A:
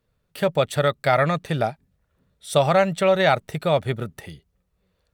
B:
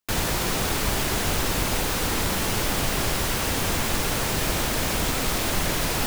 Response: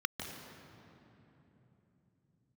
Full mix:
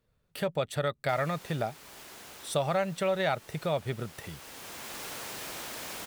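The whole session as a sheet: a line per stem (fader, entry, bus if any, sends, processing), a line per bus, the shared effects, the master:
-2.5 dB, 0.00 s, no send, none
-11.0 dB, 1.00 s, no send, high-pass 480 Hz 6 dB/octave; auto duck -10 dB, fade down 1.95 s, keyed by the first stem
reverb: none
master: compression 1.5:1, threshold -39 dBFS, peak gain reduction 8.5 dB

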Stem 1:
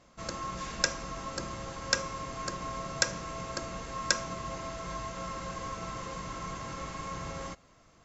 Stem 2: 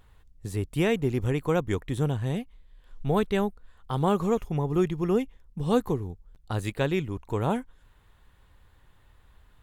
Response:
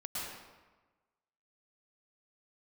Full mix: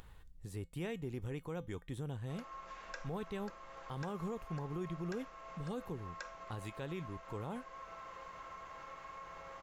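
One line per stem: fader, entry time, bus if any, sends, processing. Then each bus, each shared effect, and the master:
-6.0 dB, 2.10 s, no send, three-band isolator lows -19 dB, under 470 Hz, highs -15 dB, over 2.9 kHz
-7.5 dB, 0.00 s, no send, none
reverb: none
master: upward compressor, threshold -38 dBFS; feedback comb 170 Hz, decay 0.2 s, harmonics odd, mix 50%; peak limiter -31.5 dBFS, peak gain reduction 8.5 dB

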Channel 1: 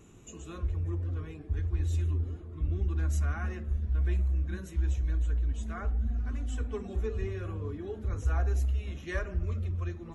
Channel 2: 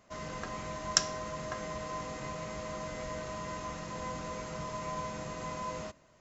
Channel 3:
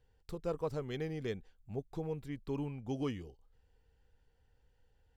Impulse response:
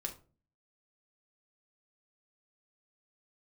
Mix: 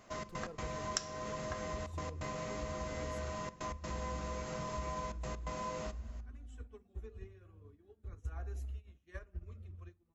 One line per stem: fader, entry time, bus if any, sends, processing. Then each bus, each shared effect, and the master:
-5.0 dB, 0.00 s, send -20 dB, upward expansion 2.5:1, over -44 dBFS
+1.5 dB, 0.00 s, send -7 dB, trance gate "xx.x.xxxxxxxxx" 129 bpm -24 dB
-9.5 dB, 0.00 s, no send, none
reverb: on, RT60 0.40 s, pre-delay 3 ms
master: compression 2.5:1, threshold -40 dBFS, peak gain reduction 16.5 dB

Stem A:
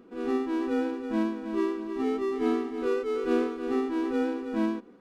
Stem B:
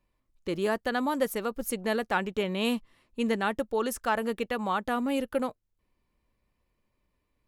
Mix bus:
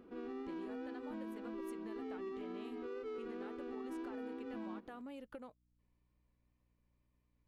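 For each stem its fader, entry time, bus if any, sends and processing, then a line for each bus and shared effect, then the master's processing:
-5.5 dB, 0.00 s, no send, low-pass 4.7 kHz 12 dB/octave; peak limiter -26.5 dBFS, peak gain reduction 11 dB
-7.5 dB, 0.00 s, no send, treble shelf 6.4 kHz -10 dB; compression 10:1, threshold -37 dBFS, peak gain reduction 16 dB; hum 60 Hz, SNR 28 dB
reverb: none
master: wow and flutter 24 cents; compression 2.5:1, threshold -45 dBFS, peak gain reduction 7.5 dB

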